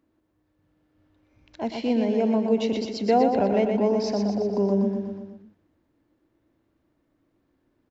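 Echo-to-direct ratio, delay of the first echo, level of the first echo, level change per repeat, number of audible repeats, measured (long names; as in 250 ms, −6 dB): −3.5 dB, 122 ms, −5.5 dB, −4.5 dB, 5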